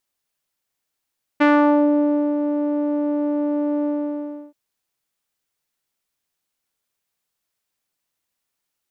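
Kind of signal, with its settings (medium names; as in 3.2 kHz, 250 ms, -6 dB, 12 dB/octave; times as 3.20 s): synth note saw D4 12 dB/octave, low-pass 540 Hz, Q 1.4, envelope 2 oct, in 0.47 s, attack 15 ms, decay 0.93 s, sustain -8 dB, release 0.69 s, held 2.44 s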